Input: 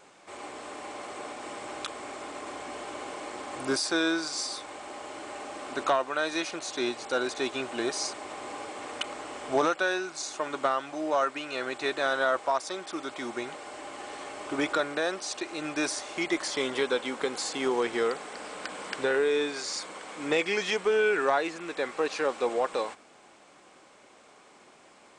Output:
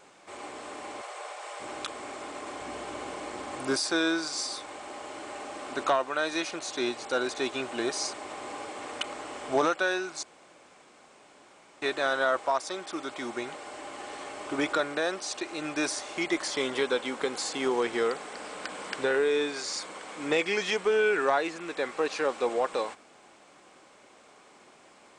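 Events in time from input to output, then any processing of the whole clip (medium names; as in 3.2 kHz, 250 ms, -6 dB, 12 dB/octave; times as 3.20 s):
1.01–1.60 s: inverse Chebyshev high-pass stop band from 240 Hz
2.61–3.56 s: bass shelf 170 Hz +8 dB
10.23–11.82 s: room tone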